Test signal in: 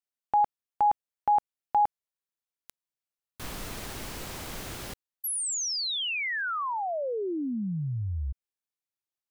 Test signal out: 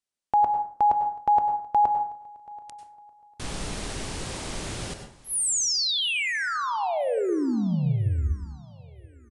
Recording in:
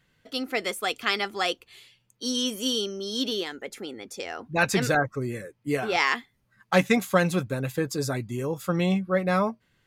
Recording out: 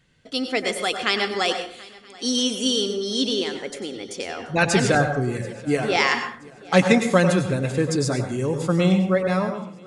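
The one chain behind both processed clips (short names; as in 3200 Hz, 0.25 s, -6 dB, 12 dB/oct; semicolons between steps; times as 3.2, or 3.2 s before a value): ending faded out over 0.76 s; bell 1300 Hz -4 dB 2 oct; on a send: swung echo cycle 0.976 s, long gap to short 3:1, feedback 30%, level -23 dB; on the sum: plate-style reverb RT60 0.52 s, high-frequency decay 0.55×, pre-delay 85 ms, DRR 6 dB; downsampling 22050 Hz; gain +5.5 dB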